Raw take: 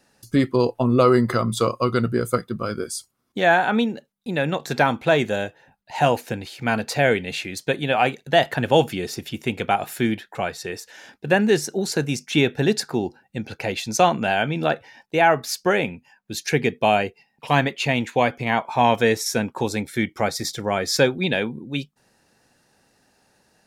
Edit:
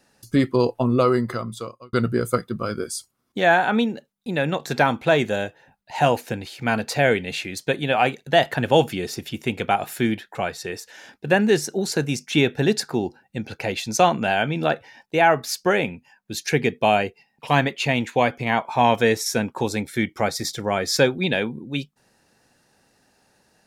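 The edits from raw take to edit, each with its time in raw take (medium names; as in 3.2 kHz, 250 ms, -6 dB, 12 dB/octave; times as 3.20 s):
0.75–1.93 s: fade out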